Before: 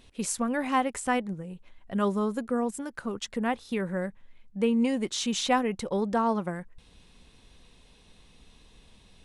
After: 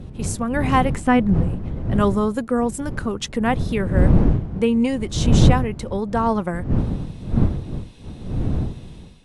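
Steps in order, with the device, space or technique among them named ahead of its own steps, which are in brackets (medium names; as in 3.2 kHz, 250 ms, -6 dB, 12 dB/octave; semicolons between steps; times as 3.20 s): 0.95–1.43 s: tone controls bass +13 dB, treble -10 dB; smartphone video outdoors (wind noise 150 Hz -26 dBFS; level rider gain up to 8 dB; AAC 96 kbps 32 kHz)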